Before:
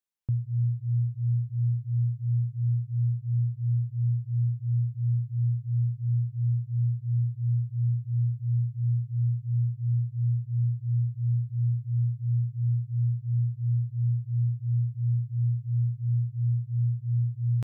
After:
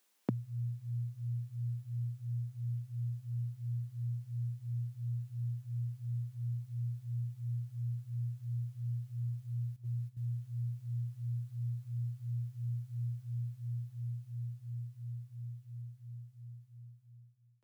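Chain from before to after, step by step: ending faded out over 4.60 s; steep high-pass 210 Hz 36 dB/oct; 9.76–10.17 gate -59 dBFS, range -9 dB; gain +18 dB

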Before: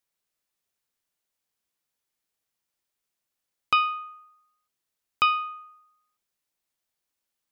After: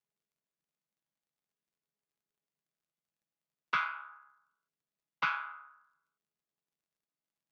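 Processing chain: chord vocoder minor triad, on C#3; crackle 60/s -65 dBFS; gain -9 dB

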